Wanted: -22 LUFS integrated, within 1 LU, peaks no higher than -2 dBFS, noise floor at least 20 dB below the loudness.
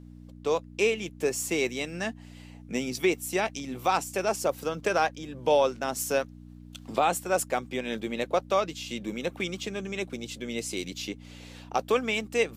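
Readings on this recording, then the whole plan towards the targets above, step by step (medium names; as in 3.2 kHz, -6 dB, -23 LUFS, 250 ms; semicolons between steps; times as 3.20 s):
hum 60 Hz; highest harmonic 300 Hz; hum level -45 dBFS; loudness -29.0 LUFS; peak level -11.5 dBFS; loudness target -22.0 LUFS
-> de-hum 60 Hz, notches 5; trim +7 dB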